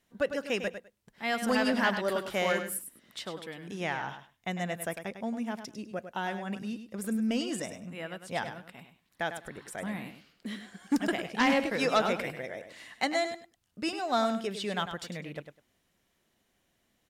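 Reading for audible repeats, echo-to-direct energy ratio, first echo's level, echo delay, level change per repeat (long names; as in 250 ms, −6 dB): 2, −9.5 dB, −9.5 dB, 101 ms, −16.0 dB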